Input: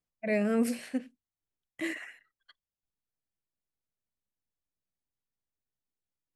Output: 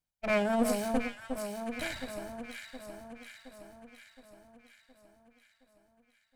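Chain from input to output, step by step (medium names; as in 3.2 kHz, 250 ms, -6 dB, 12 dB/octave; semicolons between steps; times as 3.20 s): comb filter that takes the minimum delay 1.3 ms; 0.69–1.84 s: treble shelf 7 kHz +9 dB; on a send: echo whose repeats swap between lows and highs 359 ms, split 1.3 kHz, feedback 74%, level -4.5 dB; on the sum: trim +1.5 dB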